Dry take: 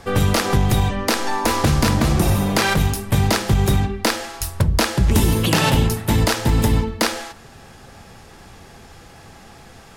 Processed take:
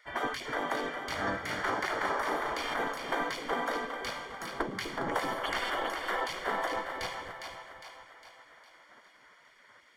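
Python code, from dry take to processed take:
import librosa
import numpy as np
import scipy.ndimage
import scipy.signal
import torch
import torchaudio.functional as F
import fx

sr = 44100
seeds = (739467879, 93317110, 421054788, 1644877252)

y = scipy.signal.savgol_filter(x, 41, 4, mode='constant')
y = fx.spec_gate(y, sr, threshold_db=-20, keep='weak')
y = fx.echo_split(y, sr, split_hz=560.0, low_ms=248, high_ms=407, feedback_pct=52, wet_db=-6)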